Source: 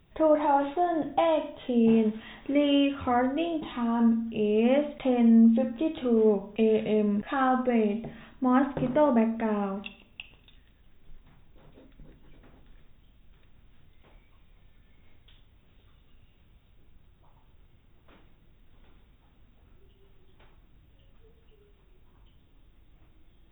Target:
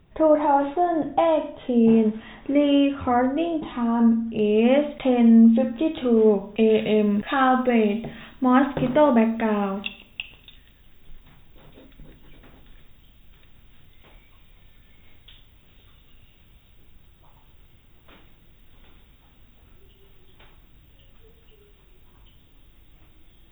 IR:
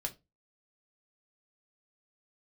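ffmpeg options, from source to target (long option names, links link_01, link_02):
-af "asetnsamples=nb_out_samples=441:pad=0,asendcmd='4.39 highshelf g 3;6.7 highshelf g 11',highshelf=frequency=3000:gain=-9,volume=5dB"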